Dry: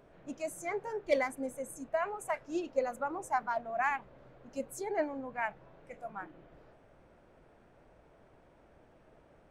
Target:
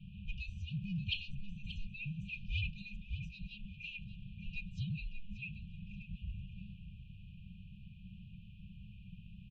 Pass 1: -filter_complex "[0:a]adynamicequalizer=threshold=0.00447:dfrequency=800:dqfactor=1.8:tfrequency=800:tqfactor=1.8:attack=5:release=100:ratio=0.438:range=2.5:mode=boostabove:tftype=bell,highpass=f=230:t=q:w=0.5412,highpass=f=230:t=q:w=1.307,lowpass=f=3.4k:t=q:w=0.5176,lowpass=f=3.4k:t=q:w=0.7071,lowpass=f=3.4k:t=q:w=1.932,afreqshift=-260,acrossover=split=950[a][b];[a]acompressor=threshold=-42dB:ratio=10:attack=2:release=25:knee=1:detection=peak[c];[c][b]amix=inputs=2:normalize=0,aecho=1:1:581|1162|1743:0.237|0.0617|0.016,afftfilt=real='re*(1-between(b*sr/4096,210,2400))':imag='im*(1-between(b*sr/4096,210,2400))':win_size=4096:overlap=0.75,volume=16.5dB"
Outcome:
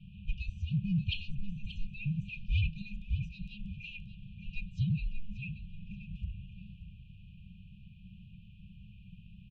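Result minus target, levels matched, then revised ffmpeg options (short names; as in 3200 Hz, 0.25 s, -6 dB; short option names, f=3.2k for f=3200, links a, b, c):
compressor: peak gain reduction -8.5 dB
-filter_complex "[0:a]adynamicequalizer=threshold=0.00447:dfrequency=800:dqfactor=1.8:tfrequency=800:tqfactor=1.8:attack=5:release=100:ratio=0.438:range=2.5:mode=boostabove:tftype=bell,highpass=f=230:t=q:w=0.5412,highpass=f=230:t=q:w=1.307,lowpass=f=3.4k:t=q:w=0.5176,lowpass=f=3.4k:t=q:w=0.7071,lowpass=f=3.4k:t=q:w=1.932,afreqshift=-260,acrossover=split=950[a][b];[a]acompressor=threshold=-51.5dB:ratio=10:attack=2:release=25:knee=1:detection=peak[c];[c][b]amix=inputs=2:normalize=0,aecho=1:1:581|1162|1743:0.237|0.0617|0.016,afftfilt=real='re*(1-between(b*sr/4096,210,2400))':imag='im*(1-between(b*sr/4096,210,2400))':win_size=4096:overlap=0.75,volume=16.5dB"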